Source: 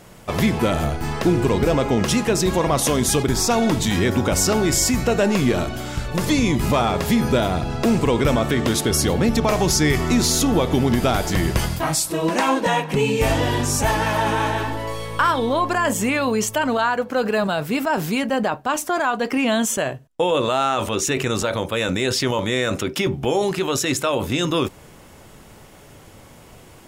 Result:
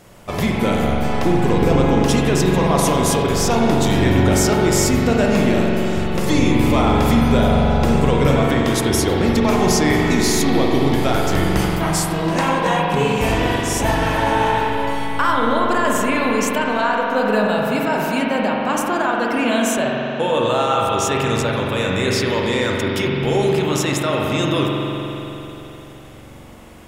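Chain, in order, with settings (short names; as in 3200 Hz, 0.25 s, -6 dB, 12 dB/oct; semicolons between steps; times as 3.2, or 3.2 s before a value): spring tank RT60 3.6 s, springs 43 ms, chirp 50 ms, DRR -2 dB; gain -1.5 dB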